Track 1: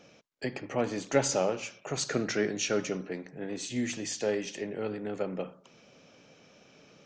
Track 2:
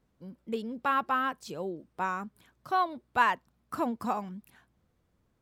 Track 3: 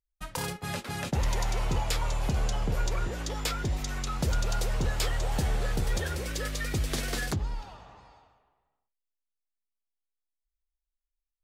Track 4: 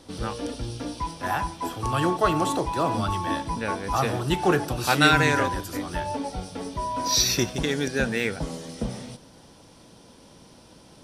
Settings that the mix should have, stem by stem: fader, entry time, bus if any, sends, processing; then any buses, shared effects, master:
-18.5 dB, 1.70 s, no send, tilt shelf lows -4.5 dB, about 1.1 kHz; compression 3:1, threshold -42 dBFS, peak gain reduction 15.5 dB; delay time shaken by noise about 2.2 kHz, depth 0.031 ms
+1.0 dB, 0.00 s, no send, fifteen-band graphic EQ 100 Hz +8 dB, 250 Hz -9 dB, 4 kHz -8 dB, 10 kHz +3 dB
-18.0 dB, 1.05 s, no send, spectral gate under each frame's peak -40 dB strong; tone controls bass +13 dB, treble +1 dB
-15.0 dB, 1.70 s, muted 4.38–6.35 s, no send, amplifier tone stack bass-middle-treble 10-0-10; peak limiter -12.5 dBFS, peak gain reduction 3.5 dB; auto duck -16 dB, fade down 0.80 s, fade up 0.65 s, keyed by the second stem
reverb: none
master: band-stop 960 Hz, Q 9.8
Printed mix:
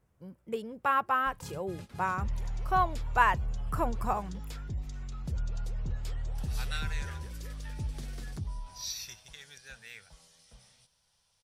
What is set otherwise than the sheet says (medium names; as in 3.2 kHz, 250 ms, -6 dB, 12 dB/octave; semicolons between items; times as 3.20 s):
stem 1: muted; stem 4: missing peak limiter -12.5 dBFS, peak gain reduction 3.5 dB; master: missing band-stop 960 Hz, Q 9.8